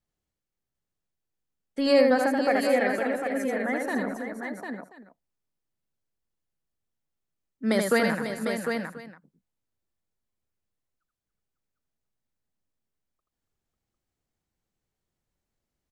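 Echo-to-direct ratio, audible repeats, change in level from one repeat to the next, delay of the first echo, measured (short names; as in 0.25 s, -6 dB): -1.0 dB, 7, no steady repeat, 81 ms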